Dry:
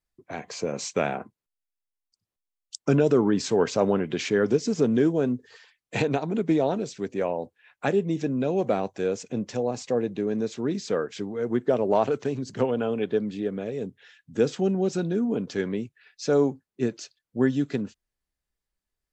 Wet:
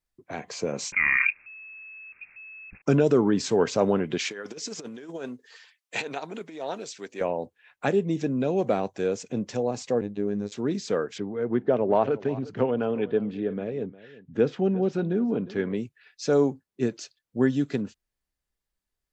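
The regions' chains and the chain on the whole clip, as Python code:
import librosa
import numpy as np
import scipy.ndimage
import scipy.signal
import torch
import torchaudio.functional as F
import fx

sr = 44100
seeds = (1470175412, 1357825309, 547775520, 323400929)

y = fx.chain(x, sr, fx.peak_eq(hz=2000.0, db=-13.0, octaves=1.1),
    fx.freq_invert(carrier_hz=2600),
    fx.env_flatten(amount_pct=100), at=(0.92, 2.82))
y = fx.chain(y, sr, fx.over_compress(threshold_db=-24.0, ratio=-0.5),
    fx.highpass(hz=1200.0, slope=6), at=(4.18, 7.21))
y = fx.chain(y, sr, fx.peak_eq(hz=4600.0, db=-5.5, octaves=2.9),
    fx.robotise(hz=102.0), at=(10.01, 10.52))
y = fx.chain(y, sr, fx.lowpass(hz=2800.0, slope=12),
    fx.echo_single(ms=356, db=-18.0), at=(11.18, 15.74))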